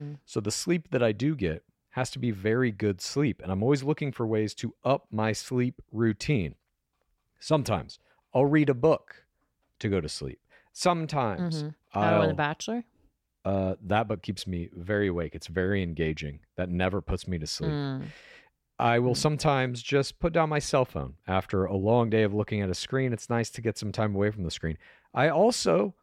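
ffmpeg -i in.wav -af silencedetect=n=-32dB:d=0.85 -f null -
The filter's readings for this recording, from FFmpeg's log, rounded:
silence_start: 6.50
silence_end: 7.45 | silence_duration: 0.96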